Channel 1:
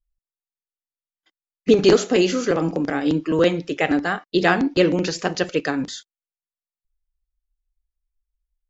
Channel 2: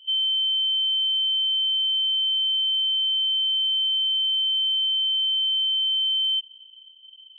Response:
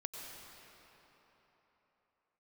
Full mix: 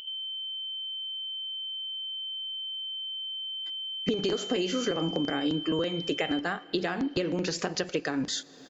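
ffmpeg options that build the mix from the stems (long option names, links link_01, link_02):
-filter_complex "[0:a]dynaudnorm=framelen=190:gausssize=7:maxgain=10dB,alimiter=limit=-8.5dB:level=0:latency=1:release=207,acompressor=threshold=-27dB:ratio=6,adelay=2400,volume=0dB,asplit=2[link_01][link_02];[link_02]volume=-18dB[link_03];[1:a]alimiter=level_in=2.5dB:limit=-24dB:level=0:latency=1,volume=-2.5dB,volume=-9.5dB[link_04];[2:a]atrim=start_sample=2205[link_05];[link_03][link_05]afir=irnorm=-1:irlink=0[link_06];[link_01][link_04][link_06]amix=inputs=3:normalize=0,acompressor=mode=upward:threshold=-32dB:ratio=2.5"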